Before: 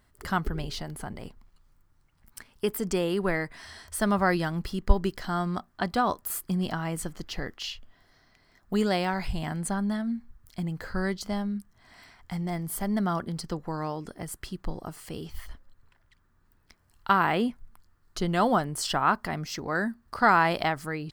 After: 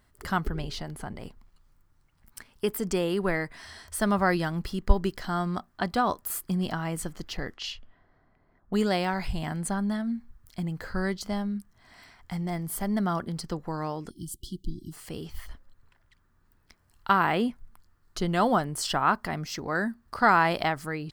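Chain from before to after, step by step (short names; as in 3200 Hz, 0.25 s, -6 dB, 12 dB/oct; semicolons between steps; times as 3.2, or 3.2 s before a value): 0.48–1.22 high shelf 9200 Hz -6 dB; 7.37–8.76 low-pass opened by the level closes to 990 Hz, open at -30.5 dBFS; 14.1–14.93 spectral delete 370–2900 Hz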